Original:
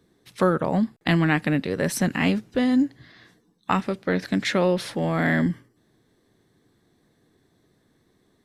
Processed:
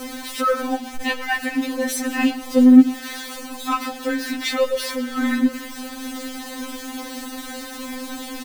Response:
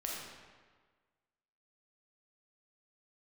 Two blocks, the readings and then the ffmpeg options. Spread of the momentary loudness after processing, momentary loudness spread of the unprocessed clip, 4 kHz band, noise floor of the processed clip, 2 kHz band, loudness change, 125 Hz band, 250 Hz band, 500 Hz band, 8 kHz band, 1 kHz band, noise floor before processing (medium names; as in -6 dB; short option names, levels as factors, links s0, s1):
16 LU, 5 LU, +5.5 dB, -35 dBFS, +1.5 dB, +2.0 dB, under -20 dB, +6.0 dB, +0.5 dB, +7.0 dB, +2.5 dB, -66 dBFS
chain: -filter_complex "[0:a]aeval=exprs='val(0)+0.5*0.0562*sgn(val(0))':c=same,asplit=2[s0][s1];[s1]adelay=122.4,volume=0.158,highshelf=f=4000:g=-2.76[s2];[s0][s2]amix=inputs=2:normalize=0,afftfilt=real='re*3.46*eq(mod(b,12),0)':imag='im*3.46*eq(mod(b,12),0)':win_size=2048:overlap=0.75,volume=1.19"